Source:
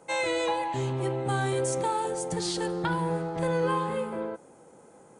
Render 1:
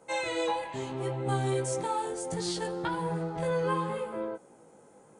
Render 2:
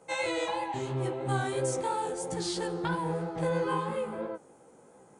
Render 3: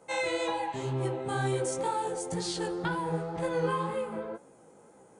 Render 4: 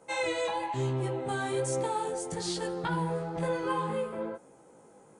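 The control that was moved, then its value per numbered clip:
chorus, rate: 0.71 Hz, 3 Hz, 2 Hz, 1.1 Hz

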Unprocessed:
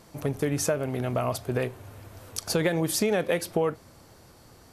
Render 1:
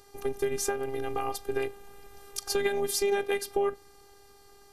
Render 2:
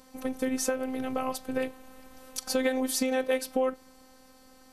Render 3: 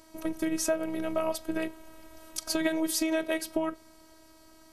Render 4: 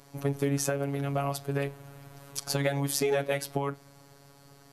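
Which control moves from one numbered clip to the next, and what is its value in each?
robot voice, frequency: 400 Hz, 260 Hz, 320 Hz, 140 Hz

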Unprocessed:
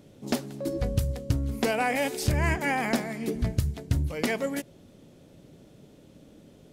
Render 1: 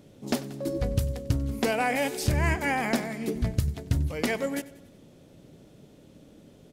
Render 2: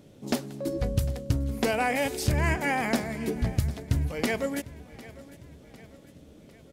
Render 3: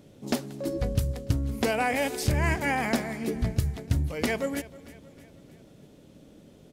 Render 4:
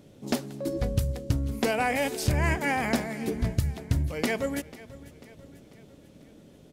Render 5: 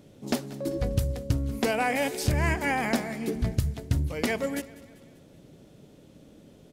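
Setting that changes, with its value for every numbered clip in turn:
feedback delay, time: 94 ms, 752 ms, 315 ms, 493 ms, 195 ms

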